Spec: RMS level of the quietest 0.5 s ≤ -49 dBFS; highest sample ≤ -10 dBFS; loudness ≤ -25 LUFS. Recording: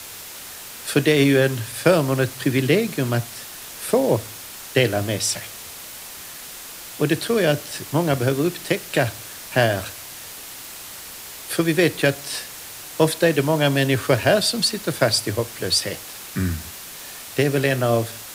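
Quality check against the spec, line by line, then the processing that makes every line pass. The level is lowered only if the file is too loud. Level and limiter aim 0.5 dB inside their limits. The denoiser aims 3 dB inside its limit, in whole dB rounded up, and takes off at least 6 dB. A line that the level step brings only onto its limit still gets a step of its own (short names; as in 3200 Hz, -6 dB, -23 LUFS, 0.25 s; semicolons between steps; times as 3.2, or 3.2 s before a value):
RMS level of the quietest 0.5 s -37 dBFS: fail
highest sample -3.5 dBFS: fail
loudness -21.0 LUFS: fail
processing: denoiser 11 dB, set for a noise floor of -37 dBFS; gain -4.5 dB; limiter -10.5 dBFS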